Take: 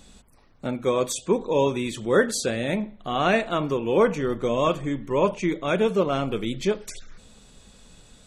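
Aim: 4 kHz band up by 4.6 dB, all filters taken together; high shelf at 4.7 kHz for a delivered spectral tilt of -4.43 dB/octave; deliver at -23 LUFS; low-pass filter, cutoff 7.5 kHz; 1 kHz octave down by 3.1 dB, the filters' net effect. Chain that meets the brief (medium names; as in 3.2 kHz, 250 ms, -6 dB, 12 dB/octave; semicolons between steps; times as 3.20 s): low-pass 7.5 kHz; peaking EQ 1 kHz -4.5 dB; peaking EQ 4 kHz +4.5 dB; treble shelf 4.7 kHz +4 dB; trim +1.5 dB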